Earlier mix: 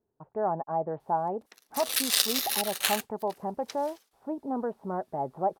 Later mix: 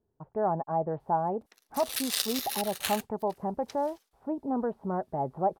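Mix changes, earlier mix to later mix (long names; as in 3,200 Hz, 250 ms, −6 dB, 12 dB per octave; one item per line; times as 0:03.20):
speech: add low-shelf EQ 120 Hz +12 dB
background −5.5 dB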